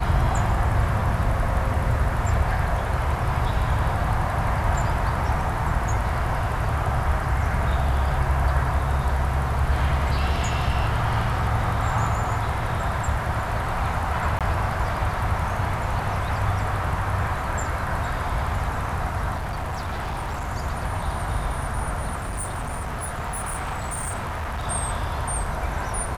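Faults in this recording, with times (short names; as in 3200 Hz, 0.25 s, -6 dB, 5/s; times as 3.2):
14.39–14.41 gap 17 ms
19.36–20.49 clipped -25 dBFS
22.18–24.67 clipped -25.5 dBFS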